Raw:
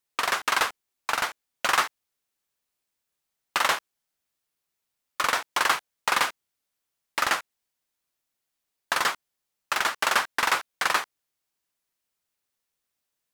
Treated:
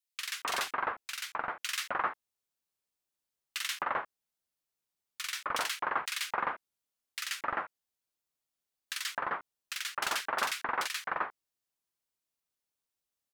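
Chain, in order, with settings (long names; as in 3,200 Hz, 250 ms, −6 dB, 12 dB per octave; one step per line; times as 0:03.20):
multiband delay without the direct sound highs, lows 260 ms, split 1,900 Hz
level −6.5 dB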